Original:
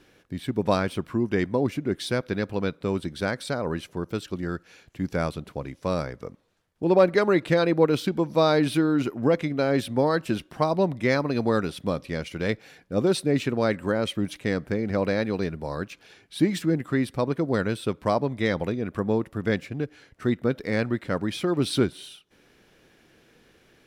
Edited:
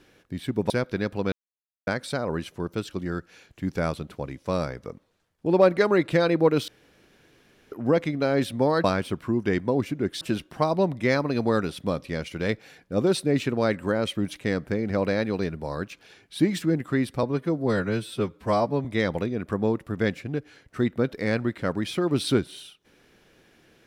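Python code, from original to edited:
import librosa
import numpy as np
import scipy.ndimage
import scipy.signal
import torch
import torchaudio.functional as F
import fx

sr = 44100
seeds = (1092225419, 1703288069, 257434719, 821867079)

y = fx.edit(x, sr, fx.move(start_s=0.7, length_s=1.37, to_s=10.21),
    fx.silence(start_s=2.69, length_s=0.55),
    fx.room_tone_fill(start_s=8.05, length_s=1.04),
    fx.stretch_span(start_s=17.23, length_s=1.08, factor=1.5), tone=tone)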